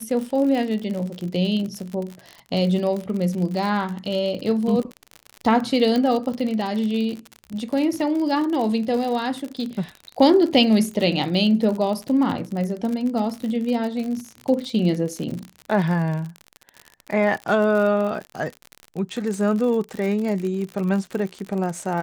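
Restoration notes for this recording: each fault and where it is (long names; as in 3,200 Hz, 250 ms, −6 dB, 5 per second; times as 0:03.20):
surface crackle 55 per second −27 dBFS
0:05.96: click −12 dBFS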